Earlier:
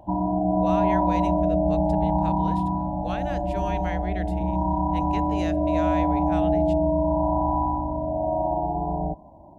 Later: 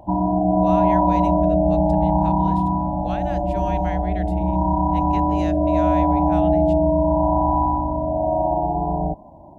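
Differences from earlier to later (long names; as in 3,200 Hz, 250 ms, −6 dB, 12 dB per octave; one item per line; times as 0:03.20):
background +5.5 dB
reverb: off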